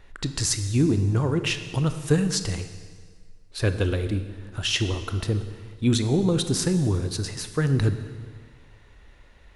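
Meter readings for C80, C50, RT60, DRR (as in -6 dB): 11.5 dB, 10.0 dB, 1.7 s, 9.0 dB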